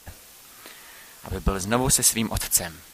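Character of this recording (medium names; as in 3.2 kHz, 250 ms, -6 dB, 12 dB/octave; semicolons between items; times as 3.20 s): noise floor -49 dBFS; spectral tilt -3.0 dB/octave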